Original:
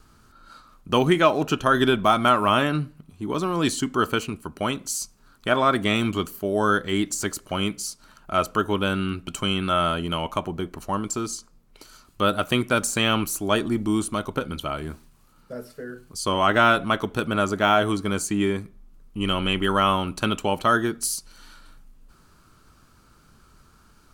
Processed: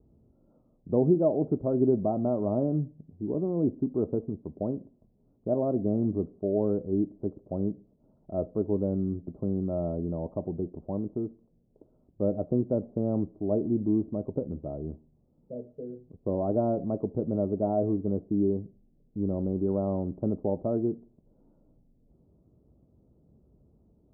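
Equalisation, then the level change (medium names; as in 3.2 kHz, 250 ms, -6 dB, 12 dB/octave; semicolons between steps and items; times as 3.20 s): high-pass 58 Hz; steep low-pass 650 Hz 36 dB/octave; -2.5 dB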